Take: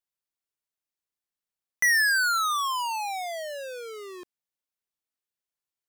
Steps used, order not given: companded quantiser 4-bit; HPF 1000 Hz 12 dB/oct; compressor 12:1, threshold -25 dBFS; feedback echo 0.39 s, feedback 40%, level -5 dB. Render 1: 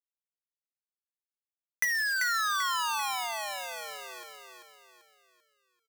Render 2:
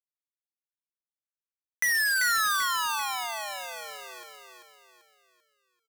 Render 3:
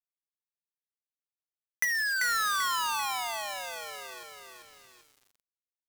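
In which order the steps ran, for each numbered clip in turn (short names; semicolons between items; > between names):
HPF > compressor > companded quantiser > feedback echo; compressor > HPF > companded quantiser > feedback echo; HPF > compressor > feedback echo > companded quantiser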